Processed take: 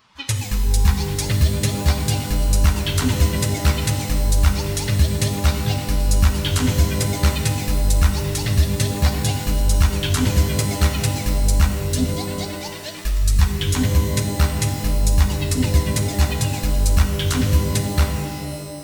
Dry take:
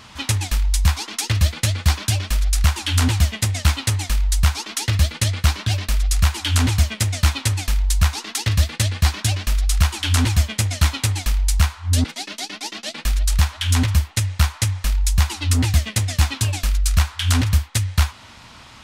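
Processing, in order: per-bin expansion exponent 1.5; shimmer reverb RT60 1.8 s, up +12 st, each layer -2 dB, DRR 5.5 dB

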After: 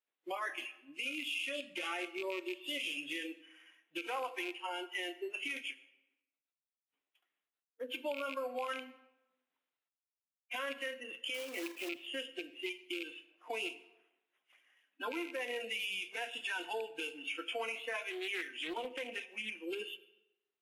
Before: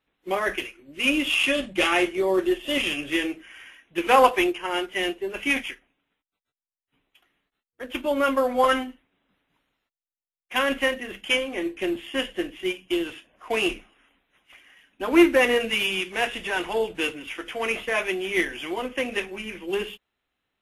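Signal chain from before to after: rattling part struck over -32 dBFS, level -14 dBFS; spectral noise reduction 17 dB; compressor 8:1, threshold -33 dBFS, peak gain reduction 21 dB; 11.34–11.89 companded quantiser 4-bit; HPF 420 Hz 12 dB/oct; limiter -29 dBFS, peak gain reduction 8 dB; reverb RT60 0.95 s, pre-delay 68 ms, DRR 16.5 dB; 17.91–19.55 Doppler distortion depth 0.21 ms

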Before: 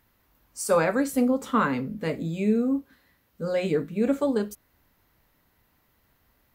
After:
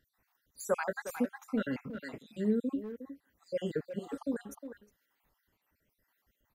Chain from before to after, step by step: random spectral dropouts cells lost 59%; speakerphone echo 0.36 s, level -8 dB; gain -6.5 dB

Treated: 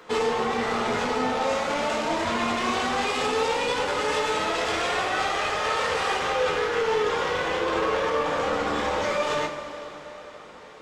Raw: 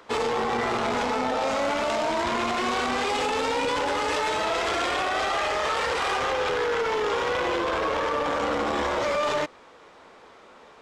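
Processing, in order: limiter -22 dBFS, peak gain reduction 3.5 dB; two-slope reverb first 0.22 s, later 4 s, from -19 dB, DRR -1.5 dB

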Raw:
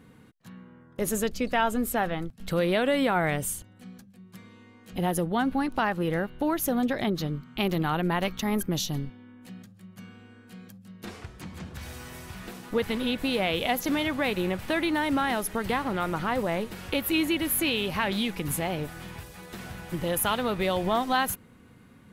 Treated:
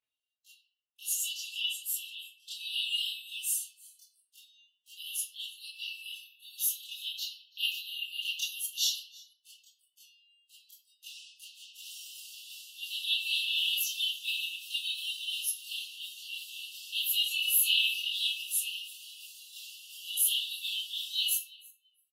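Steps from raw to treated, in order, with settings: brick-wall FIR high-pass 2600 Hz; feedback echo 0.333 s, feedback 20%, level -23.5 dB; spectral noise reduction 27 dB; 2.26–2.69 high shelf 11000 Hz -11 dB; reverb RT60 0.70 s, pre-delay 19 ms, DRR -11.5 dB; endless flanger 4.2 ms -0.27 Hz; gain -2.5 dB

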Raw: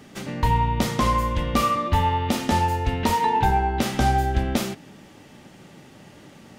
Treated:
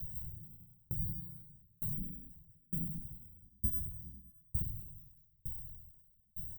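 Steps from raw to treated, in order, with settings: air absorption 63 m; comb 3.9 ms, depth 97%; reverb RT60 0.30 s, pre-delay 53 ms, DRR 9 dB; in parallel at -6.5 dB: requantised 8-bit, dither none; on the sum: tone controls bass -13 dB, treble +15 dB; sample-and-hold 14×; on a send: feedback echo 0.204 s, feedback 45%, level -12 dB; on the sum: spectral gate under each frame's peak -15 dB weak; compressor 6:1, threshold -32 dBFS, peak gain reduction 20.5 dB; soft clip -32 dBFS, distortion -11 dB; inverse Chebyshev band-stop 870–5800 Hz, stop band 80 dB; dB-ramp tremolo decaying 1.1 Hz, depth 38 dB; gain +17 dB

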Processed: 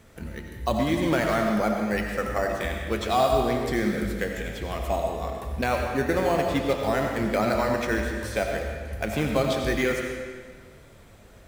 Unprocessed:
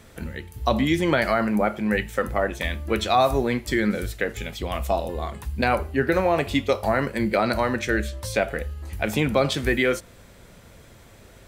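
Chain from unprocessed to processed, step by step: in parallel at -7 dB: decimation with a swept rate 9×, swing 60% 0.35 Hz; on the sum: digital reverb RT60 1.6 s, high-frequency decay 0.9×, pre-delay 50 ms, DRR 2 dB; gain -7 dB

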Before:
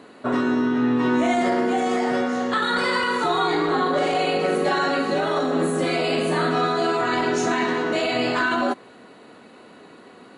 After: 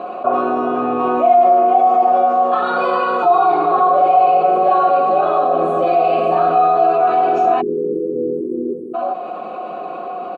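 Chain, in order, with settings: vowel filter a; tilt shelf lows +6.5 dB, about 1400 Hz; notch 850 Hz, Q 21; comb 5.6 ms, depth 57%; on a send: echo 0.402 s -13 dB; on the sum: spectral delete 7.61–8.95, 500–8200 Hz; fast leveller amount 50%; gain +6.5 dB

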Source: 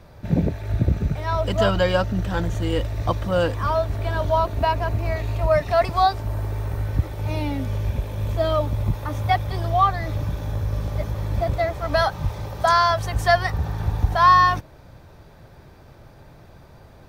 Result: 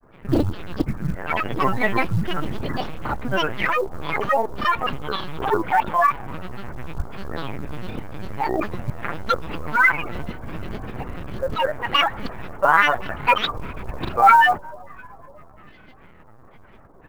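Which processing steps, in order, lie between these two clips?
rattling part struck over -15 dBFS, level -24 dBFS; speaker cabinet 100–2500 Hz, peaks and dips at 130 Hz +7 dB, 190 Hz +10 dB, 330 Hz -5 dB, 520 Hz -4 dB, 1600 Hz +6 dB, 2300 Hz +3 dB; LPC vocoder at 8 kHz pitch kept; on a send at -22 dB: reverb RT60 4.0 s, pre-delay 25 ms; on the sum: grains, spray 26 ms, pitch spread up and down by 12 st; low shelf 220 Hz -8 dB; short-mantissa float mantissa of 4-bit; gain +2 dB

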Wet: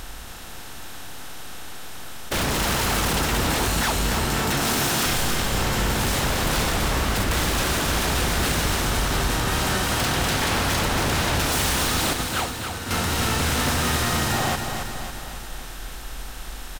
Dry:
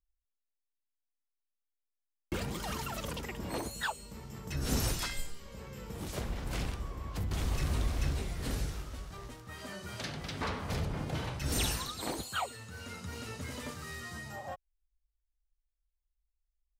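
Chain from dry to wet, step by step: per-bin compression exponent 0.4; 4.26–5.06 HPF 120 Hz 24 dB/oct; 12.13–12.91 expander -22 dBFS; in parallel at +1.5 dB: compressor, threshold -35 dBFS, peak gain reduction 12 dB; on the sum: wavefolder -24.5 dBFS; on a send: feedback echo 0.275 s, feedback 56%, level -6.5 dB; on the sum: gain +6 dB

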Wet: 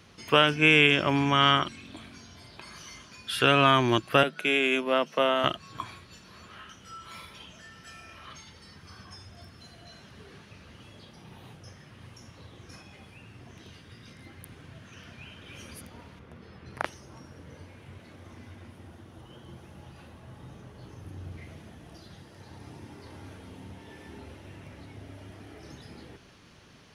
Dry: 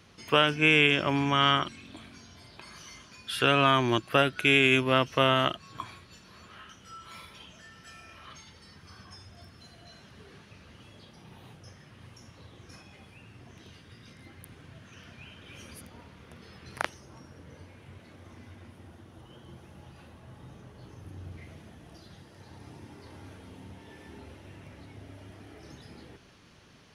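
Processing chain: 4.23–5.44 rippled Chebyshev high-pass 150 Hz, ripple 6 dB; 16.19–16.85 high shelf 2400 Hz -10.5 dB; gain +2 dB

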